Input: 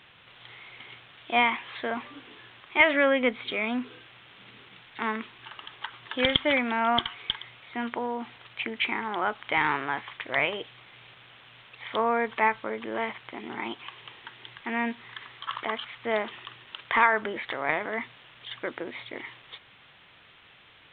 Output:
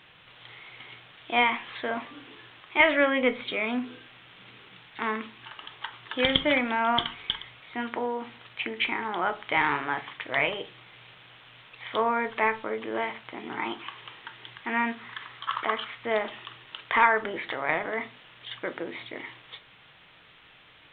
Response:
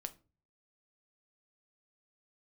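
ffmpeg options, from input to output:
-filter_complex "[0:a]asplit=3[link_01][link_02][link_03];[link_01]afade=type=out:start_time=13.47:duration=0.02[link_04];[link_02]adynamicequalizer=threshold=0.00631:dfrequency=1300:dqfactor=1.4:tfrequency=1300:tqfactor=1.4:attack=5:release=100:ratio=0.375:range=3:mode=boostabove:tftype=bell,afade=type=in:start_time=13.47:duration=0.02,afade=type=out:start_time=15.93:duration=0.02[link_05];[link_03]afade=type=in:start_time=15.93:duration=0.02[link_06];[link_04][link_05][link_06]amix=inputs=3:normalize=0[link_07];[1:a]atrim=start_sample=2205[link_08];[link_07][link_08]afir=irnorm=-1:irlink=0,volume=3.5dB"

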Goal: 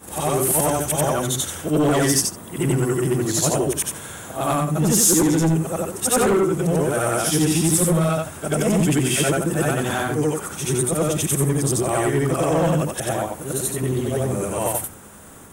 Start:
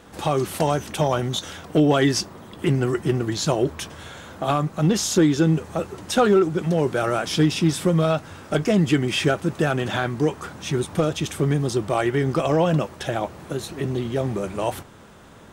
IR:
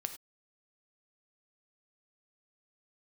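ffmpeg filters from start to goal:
-af "afftfilt=real='re':imag='-im':win_size=8192:overlap=0.75,aeval=exprs='0.335*sin(PI/2*2.24*val(0)/0.335)':channel_layout=same,highshelf=frequency=6600:width_type=q:width=1.5:gain=13.5,volume=-4dB"

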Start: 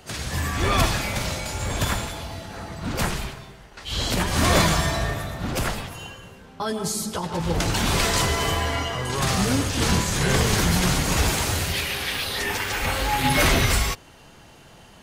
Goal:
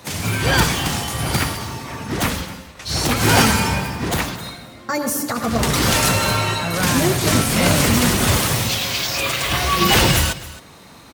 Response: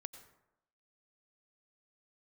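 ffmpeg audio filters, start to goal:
-af "highpass=43,aecho=1:1:360:0.133,asetrate=59535,aresample=44100,volume=5dB"

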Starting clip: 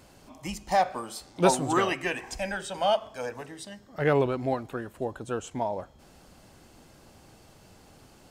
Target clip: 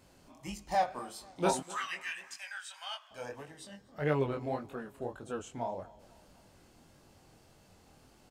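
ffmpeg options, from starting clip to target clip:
ffmpeg -i in.wav -filter_complex "[0:a]asettb=1/sr,asplit=3[link_01][link_02][link_03];[link_01]atrim=end=1.604[link_04];[link_02]atrim=start=1.6:end=3.11,asetpts=PTS-STARTPTS,afade=type=in:duration=0.004:curve=qsin,afade=type=out:start_time=1.506:duration=0.004:curve=qsin,highpass=frequency=1200:width=0.5412,highpass=frequency=1200:width=1.3066[link_05];[link_03]atrim=start=3.106[link_06];[link_04][link_05]acrossfade=duration=0.004:curve1=hsin:curve2=qsin[link_07];[link_07][link_06]acrossfade=duration=0.004:curve1=qsin:curve2=hsin,flanger=delay=20:depth=5.7:speed=1.7,asplit=2[link_08][link_09];[link_09]adelay=249,lowpass=frequency=4000:poles=1,volume=-21dB,asplit=2[link_10][link_11];[link_11]adelay=249,lowpass=frequency=4000:poles=1,volume=0.48,asplit=2[link_12][link_13];[link_13]adelay=249,lowpass=frequency=4000:poles=1,volume=0.48[link_14];[link_08][link_10][link_12][link_14]amix=inputs=4:normalize=0,volume=-4dB" out.wav

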